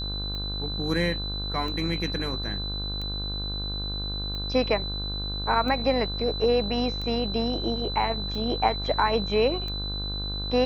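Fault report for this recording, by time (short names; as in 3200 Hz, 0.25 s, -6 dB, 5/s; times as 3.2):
buzz 50 Hz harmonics 32 -33 dBFS
tick 45 rpm -23 dBFS
tone 4000 Hz -32 dBFS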